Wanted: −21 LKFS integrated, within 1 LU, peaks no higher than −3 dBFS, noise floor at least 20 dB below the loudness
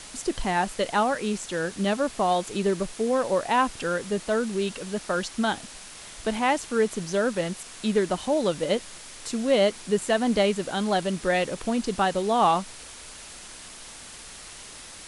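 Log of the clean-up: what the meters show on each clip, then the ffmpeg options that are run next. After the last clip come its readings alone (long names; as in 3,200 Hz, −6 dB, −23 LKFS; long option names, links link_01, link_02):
background noise floor −43 dBFS; target noise floor −46 dBFS; integrated loudness −26.0 LKFS; sample peak −9.5 dBFS; target loudness −21.0 LKFS
→ -af "afftdn=noise_reduction=6:noise_floor=-43"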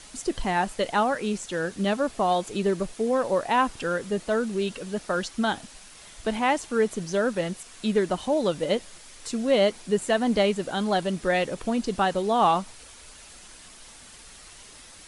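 background noise floor −48 dBFS; integrated loudness −26.0 LKFS; sample peak −9.5 dBFS; target loudness −21.0 LKFS
→ -af "volume=5dB"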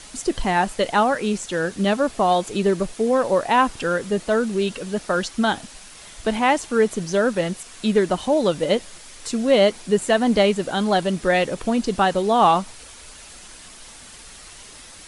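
integrated loudness −21.0 LKFS; sample peak −4.5 dBFS; background noise floor −43 dBFS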